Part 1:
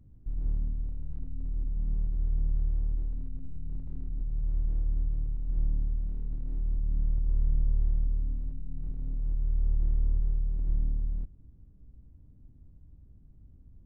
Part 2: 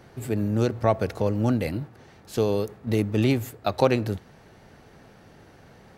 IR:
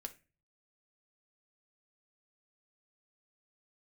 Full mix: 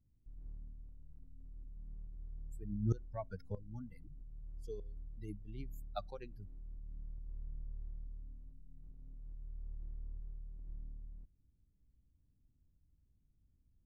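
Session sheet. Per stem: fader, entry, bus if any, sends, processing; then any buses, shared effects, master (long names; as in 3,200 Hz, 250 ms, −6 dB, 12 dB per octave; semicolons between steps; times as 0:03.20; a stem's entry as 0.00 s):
−19.5 dB, 0.00 s, no send, no processing
0:03.69 −7 dB → 0:03.96 −17.5 dB → 0:05.14 −17.5 dB → 0:05.77 −9.5 dB, 2.30 s, send −18.5 dB, spectral dynamics exaggerated over time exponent 3; low-shelf EQ 210 Hz +6 dB; tremolo with a ramp in dB swelling 1.6 Hz, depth 21 dB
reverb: on, pre-delay 5 ms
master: no processing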